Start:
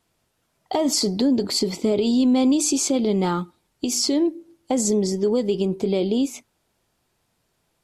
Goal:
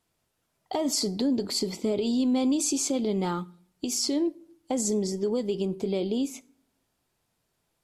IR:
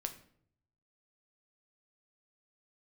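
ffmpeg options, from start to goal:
-filter_complex "[0:a]asplit=2[a][b];[1:a]atrim=start_sample=2205,highshelf=f=6.2k:g=11[c];[b][c]afir=irnorm=-1:irlink=0,volume=-11.5dB[d];[a][d]amix=inputs=2:normalize=0,volume=-8dB"

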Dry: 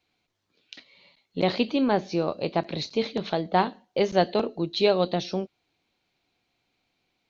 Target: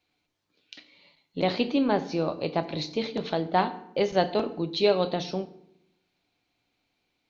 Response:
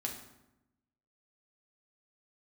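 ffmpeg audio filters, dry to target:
-filter_complex "[0:a]asplit=2[a][b];[1:a]atrim=start_sample=2205,asetrate=52920,aresample=44100[c];[b][c]afir=irnorm=-1:irlink=0,volume=-3dB[d];[a][d]amix=inputs=2:normalize=0,volume=-5dB"

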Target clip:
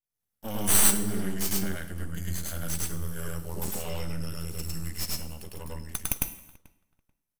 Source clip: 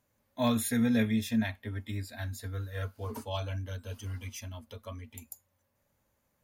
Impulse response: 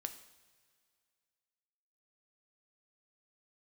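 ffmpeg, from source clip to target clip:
-filter_complex "[0:a]agate=range=-33dB:threshold=-60dB:ratio=3:detection=peak,equalizer=f=150:w=1.2:g=10.5,alimiter=limit=-24dB:level=0:latency=1:release=32,aexciter=amount=7.5:drive=4.3:freq=5.6k,asetrate=38367,aresample=44100,aeval=exprs='max(val(0),0)':c=same,asplit=2[a][b];[b]adelay=437,lowpass=f=2.8k:p=1,volume=-23dB,asplit=2[c][d];[d]adelay=437,lowpass=f=2.8k:p=1,volume=0.18[e];[a][c][e]amix=inputs=3:normalize=0,asplit=2[f][g];[1:a]atrim=start_sample=2205,afade=t=out:st=0.37:d=0.01,atrim=end_sample=16758,adelay=103[h];[g][h]afir=irnorm=-1:irlink=0,volume=3.5dB[i];[f][i]amix=inputs=2:normalize=0"

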